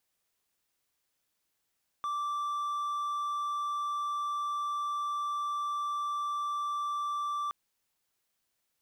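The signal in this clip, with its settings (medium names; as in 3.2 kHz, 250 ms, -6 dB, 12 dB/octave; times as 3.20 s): tone triangle 1.17 kHz -28.5 dBFS 5.47 s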